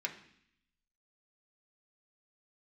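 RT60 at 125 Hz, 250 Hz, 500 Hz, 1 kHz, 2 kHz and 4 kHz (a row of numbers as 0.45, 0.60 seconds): 1.0, 0.95, 0.65, 0.65, 0.80, 0.85 seconds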